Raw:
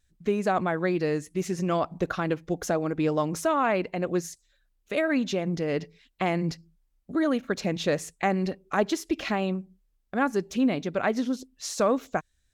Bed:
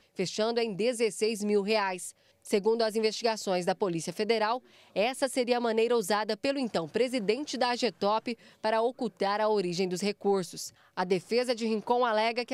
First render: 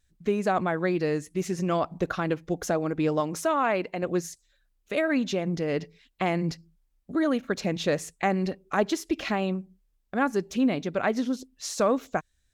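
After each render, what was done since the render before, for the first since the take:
0:03.20–0:04.03: low-shelf EQ 140 Hz −9.5 dB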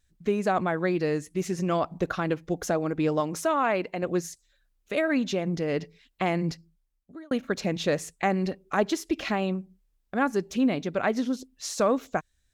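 0:06.47–0:07.31: fade out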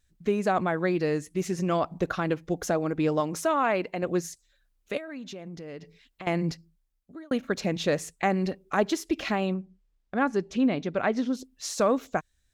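0:04.97–0:06.27: downward compressor 3 to 1, threshold −41 dBFS
0:09.54–0:11.35: high-frequency loss of the air 72 metres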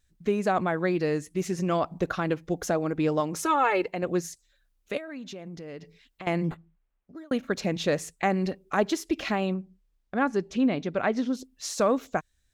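0:03.39–0:03.88: comb filter 2.3 ms, depth 94%
0:06.44–0:07.24: linearly interpolated sample-rate reduction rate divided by 8×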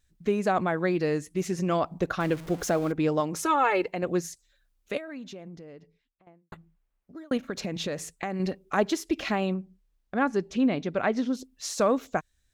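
0:02.20–0:02.92: converter with a step at zero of −38 dBFS
0:04.95–0:06.52: fade out and dull
0:07.37–0:08.40: downward compressor, threshold −27 dBFS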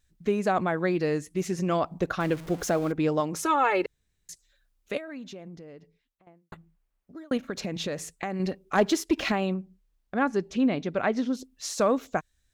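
0:03.86–0:04.29: fill with room tone
0:08.75–0:09.32: leveller curve on the samples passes 1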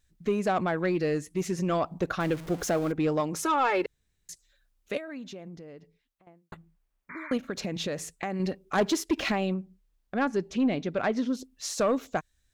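soft clipping −17 dBFS, distortion −19 dB
0:07.09–0:07.34: sound drawn into the spectrogram noise 900–2,400 Hz −42 dBFS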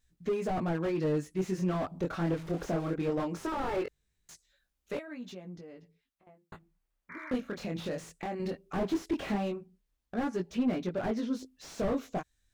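chorus effect 0.19 Hz, delay 16.5 ms, depth 8 ms
slew-rate limiting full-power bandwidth 21 Hz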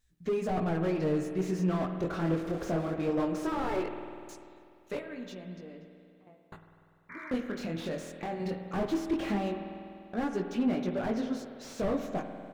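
slap from a distant wall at 47 metres, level −28 dB
spring reverb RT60 2.5 s, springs 49 ms, chirp 65 ms, DRR 6 dB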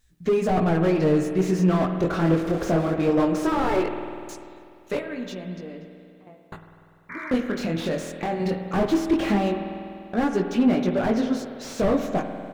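level +9 dB

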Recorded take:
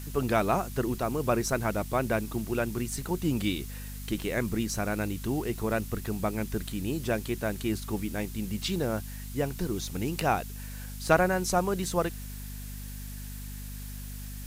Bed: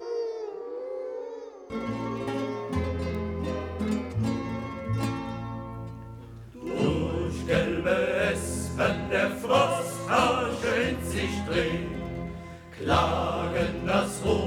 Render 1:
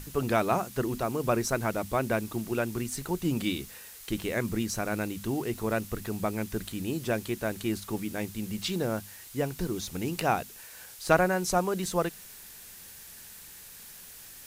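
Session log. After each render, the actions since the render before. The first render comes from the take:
mains-hum notches 50/100/150/200/250 Hz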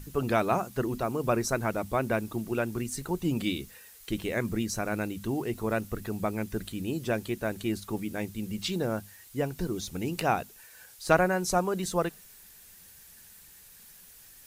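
broadband denoise 7 dB, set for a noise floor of −48 dBFS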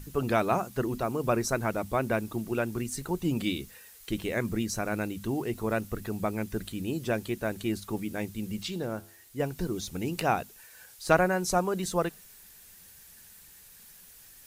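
0:08.63–0:09.40: tuned comb filter 84 Hz, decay 0.64 s, mix 40%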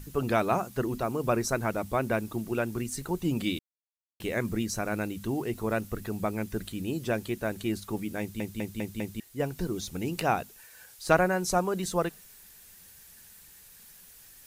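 0:03.59–0:04.20: silence
0:08.20: stutter in place 0.20 s, 5 plays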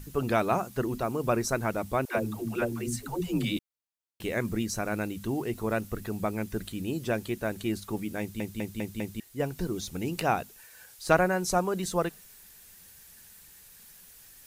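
0:02.05–0:03.57: all-pass dispersion lows, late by 131 ms, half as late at 330 Hz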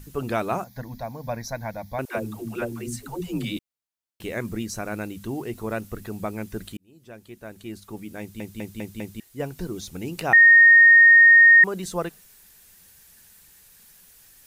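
0:00.64–0:01.99: phaser with its sweep stopped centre 1,900 Hz, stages 8
0:06.77–0:08.67: fade in
0:10.33–0:11.64: beep over 1,850 Hz −8.5 dBFS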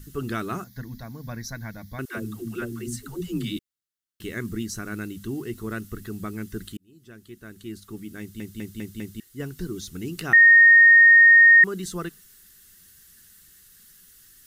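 flat-topped bell 700 Hz −13 dB 1.2 octaves
notch filter 2,400 Hz, Q 6.1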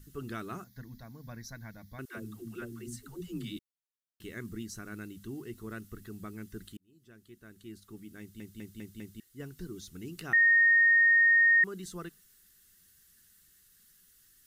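level −10 dB

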